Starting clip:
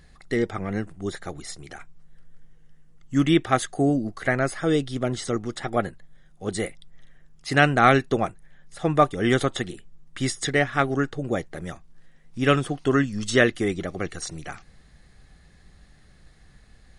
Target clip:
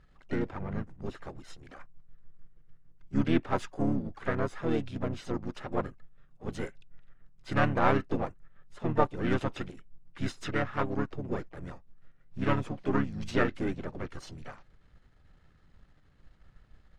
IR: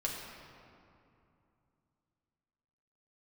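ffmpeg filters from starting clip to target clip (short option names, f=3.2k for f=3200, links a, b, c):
-filter_complex "[0:a]aeval=exprs='if(lt(val(0),0),0.447*val(0),val(0))':c=same,asplit=4[a][b][c][d];[b]asetrate=33038,aresample=44100,atempo=1.33484,volume=-1dB[e];[c]asetrate=55563,aresample=44100,atempo=0.793701,volume=-15dB[f];[d]asetrate=66075,aresample=44100,atempo=0.66742,volume=-18dB[g];[a][e][f][g]amix=inputs=4:normalize=0,aemphasis=mode=reproduction:type=75fm,volume=-8dB"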